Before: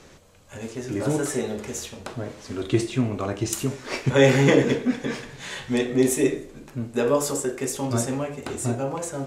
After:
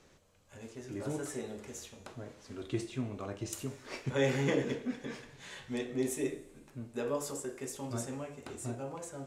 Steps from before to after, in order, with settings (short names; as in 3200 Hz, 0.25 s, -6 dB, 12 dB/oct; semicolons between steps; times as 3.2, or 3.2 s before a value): resonator 100 Hz, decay 1.9 s, mix 50%; gain -7.5 dB